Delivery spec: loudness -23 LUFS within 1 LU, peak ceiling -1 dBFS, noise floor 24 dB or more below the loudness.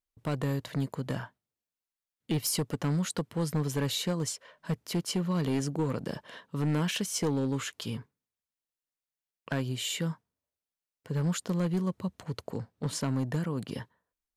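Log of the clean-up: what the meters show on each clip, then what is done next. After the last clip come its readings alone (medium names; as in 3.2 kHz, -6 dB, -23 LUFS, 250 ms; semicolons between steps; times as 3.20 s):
clipped samples 1.4%; clipping level -23.0 dBFS; loudness -32.0 LUFS; peak level -23.0 dBFS; loudness target -23.0 LUFS
-> clip repair -23 dBFS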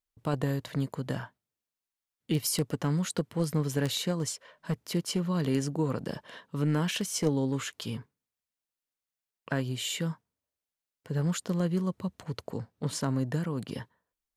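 clipped samples 0.0%; loudness -31.5 LUFS; peak level -14.0 dBFS; loudness target -23.0 LUFS
-> trim +8.5 dB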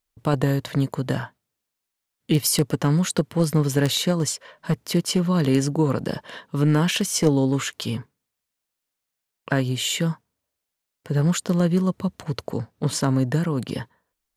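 loudness -23.0 LUFS; peak level -5.5 dBFS; noise floor -83 dBFS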